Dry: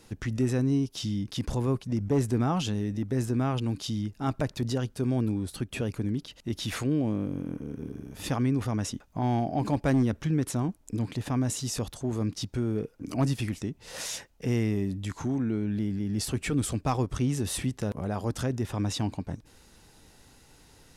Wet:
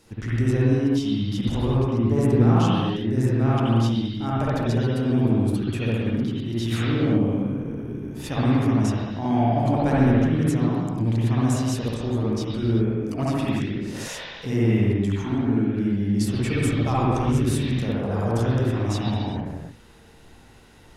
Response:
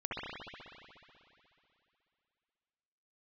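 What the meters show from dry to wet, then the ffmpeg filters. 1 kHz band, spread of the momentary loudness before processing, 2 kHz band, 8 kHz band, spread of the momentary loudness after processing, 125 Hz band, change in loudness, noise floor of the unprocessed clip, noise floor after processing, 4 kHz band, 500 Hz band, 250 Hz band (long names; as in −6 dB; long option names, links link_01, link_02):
+7.0 dB, 8 LU, +6.5 dB, −2.0 dB, 7 LU, +7.5 dB, +7.0 dB, −58 dBFS, −49 dBFS, +3.5 dB, +7.0 dB, +7.0 dB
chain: -filter_complex "[1:a]atrim=start_sample=2205,afade=type=out:start_time=0.44:duration=0.01,atrim=end_sample=19845[link_01];[0:a][link_01]afir=irnorm=-1:irlink=0,volume=2dB"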